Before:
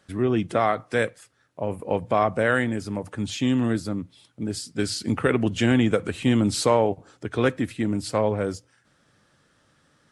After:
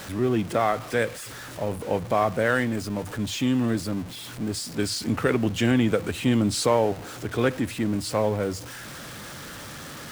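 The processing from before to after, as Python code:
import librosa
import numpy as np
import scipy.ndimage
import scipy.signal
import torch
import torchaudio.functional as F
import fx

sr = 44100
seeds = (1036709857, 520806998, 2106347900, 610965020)

y = x + 0.5 * 10.0 ** (-31.5 / 20.0) * np.sign(x)
y = y * 10.0 ** (-2.0 / 20.0)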